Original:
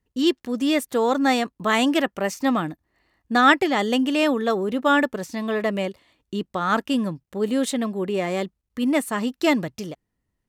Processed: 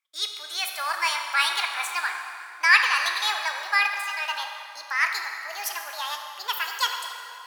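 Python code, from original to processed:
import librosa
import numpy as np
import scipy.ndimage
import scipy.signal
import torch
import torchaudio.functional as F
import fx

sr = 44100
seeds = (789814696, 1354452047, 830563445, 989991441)

y = fx.speed_glide(x, sr, from_pct=120, to_pct=161)
y = scipy.signal.sosfilt(scipy.signal.butter(4, 1100.0, 'highpass', fs=sr, output='sos'), y)
y = fx.rev_plate(y, sr, seeds[0], rt60_s=3.0, hf_ratio=0.65, predelay_ms=0, drr_db=3.0)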